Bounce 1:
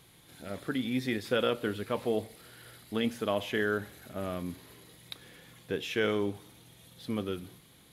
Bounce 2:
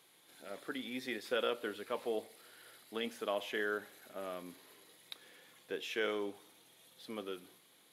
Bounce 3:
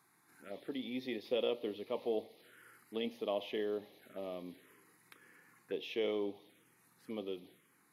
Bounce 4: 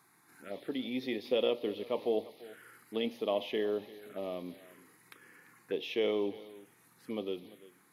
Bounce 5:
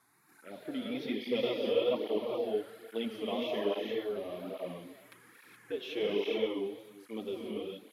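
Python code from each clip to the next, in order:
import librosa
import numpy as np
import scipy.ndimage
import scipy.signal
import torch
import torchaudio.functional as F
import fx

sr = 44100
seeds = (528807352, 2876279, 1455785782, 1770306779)

y1 = scipy.signal.sosfilt(scipy.signal.butter(2, 360.0, 'highpass', fs=sr, output='sos'), x)
y1 = F.gain(torch.from_numpy(y1), -5.0).numpy()
y2 = fx.high_shelf(y1, sr, hz=2900.0, db=-8.5)
y2 = fx.env_phaser(y2, sr, low_hz=510.0, high_hz=1500.0, full_db=-43.0)
y2 = F.gain(torch.from_numpy(y2), 3.0).numpy()
y3 = y2 + 10.0 ** (-19.5 / 20.0) * np.pad(y2, (int(342 * sr / 1000.0), 0))[:len(y2)]
y3 = F.gain(torch.from_numpy(y3), 4.5).numpy()
y4 = fx.rev_gated(y3, sr, seeds[0], gate_ms=450, shape='rising', drr_db=-2.0)
y4 = fx.wow_flutter(y4, sr, seeds[1], rate_hz=2.1, depth_cents=52.0)
y4 = fx.flanger_cancel(y4, sr, hz=1.2, depth_ms=6.9)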